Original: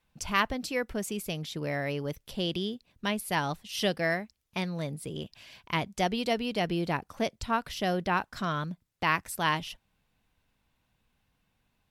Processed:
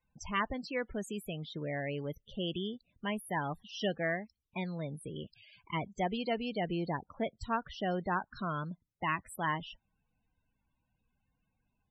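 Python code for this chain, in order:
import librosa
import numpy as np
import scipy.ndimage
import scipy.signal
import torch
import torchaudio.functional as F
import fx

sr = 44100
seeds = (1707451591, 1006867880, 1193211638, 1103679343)

y = fx.self_delay(x, sr, depth_ms=0.074)
y = fx.spec_topn(y, sr, count=32)
y = y * 10.0 ** (-4.5 / 20.0)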